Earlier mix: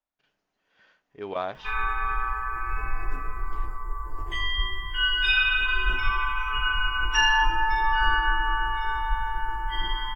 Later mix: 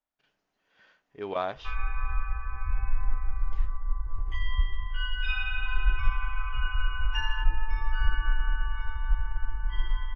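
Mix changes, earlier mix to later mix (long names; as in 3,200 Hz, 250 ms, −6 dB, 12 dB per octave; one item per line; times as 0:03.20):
background: add low-pass filter 1,100 Hz 6 dB per octave
reverb: off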